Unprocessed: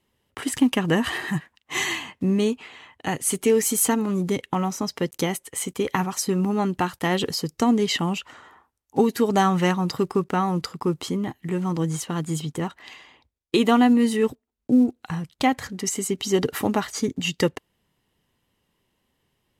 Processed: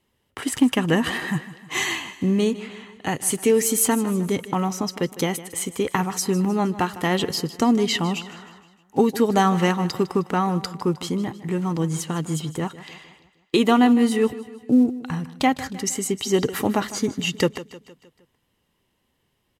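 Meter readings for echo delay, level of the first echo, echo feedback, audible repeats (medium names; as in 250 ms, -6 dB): 155 ms, -16.0 dB, 51%, 4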